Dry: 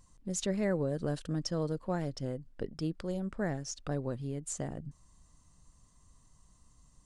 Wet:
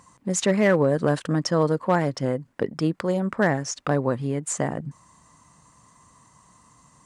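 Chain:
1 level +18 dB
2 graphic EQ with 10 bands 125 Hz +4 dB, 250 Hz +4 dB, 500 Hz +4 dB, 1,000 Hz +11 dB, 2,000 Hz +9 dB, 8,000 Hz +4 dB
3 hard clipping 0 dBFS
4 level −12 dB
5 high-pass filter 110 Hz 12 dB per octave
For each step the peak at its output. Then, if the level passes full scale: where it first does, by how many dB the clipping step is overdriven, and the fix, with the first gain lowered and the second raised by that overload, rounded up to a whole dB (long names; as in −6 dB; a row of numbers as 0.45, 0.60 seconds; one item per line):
−1.5, +4.0, 0.0, −12.0, −8.5 dBFS
step 2, 4.0 dB
step 1 +14 dB, step 4 −8 dB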